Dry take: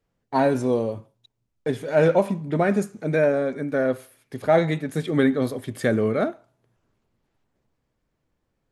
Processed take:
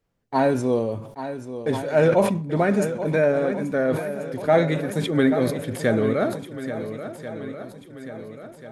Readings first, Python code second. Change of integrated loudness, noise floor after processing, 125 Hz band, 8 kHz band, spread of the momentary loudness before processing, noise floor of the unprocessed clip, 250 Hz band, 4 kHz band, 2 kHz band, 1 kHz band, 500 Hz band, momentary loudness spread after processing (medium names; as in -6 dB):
0.0 dB, -45 dBFS, +1.5 dB, +4.0 dB, 10 LU, -76 dBFS, +1.0 dB, +3.0 dB, +1.0 dB, +1.0 dB, +1.0 dB, 17 LU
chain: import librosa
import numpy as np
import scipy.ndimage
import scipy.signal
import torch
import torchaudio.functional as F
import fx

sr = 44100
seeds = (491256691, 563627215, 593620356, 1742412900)

y = fx.echo_swing(x, sr, ms=1388, ratio=1.5, feedback_pct=46, wet_db=-11.5)
y = fx.sustainer(y, sr, db_per_s=83.0)